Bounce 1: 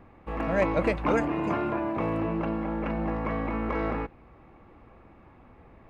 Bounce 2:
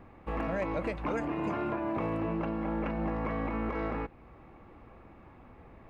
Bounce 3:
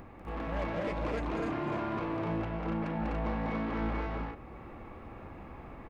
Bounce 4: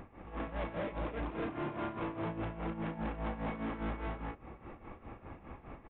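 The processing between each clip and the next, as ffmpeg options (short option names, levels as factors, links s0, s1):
-af "alimiter=limit=0.0668:level=0:latency=1:release=296"
-filter_complex "[0:a]asplit=2[s0][s1];[s1]acompressor=mode=upward:threshold=0.0178:ratio=2.5,volume=0.794[s2];[s0][s2]amix=inputs=2:normalize=0,asoftclip=type=tanh:threshold=0.0473,aecho=1:1:195.3|250.7|285.7:0.631|0.794|0.631,volume=0.473"
-af "tremolo=f=4.9:d=0.76,asoftclip=type=hard:threshold=0.0237,aresample=8000,aresample=44100"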